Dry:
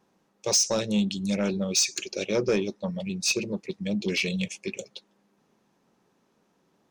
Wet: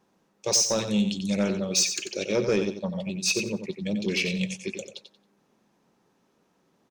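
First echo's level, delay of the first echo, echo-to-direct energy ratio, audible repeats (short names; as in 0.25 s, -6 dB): -8.5 dB, 91 ms, -8.5 dB, 3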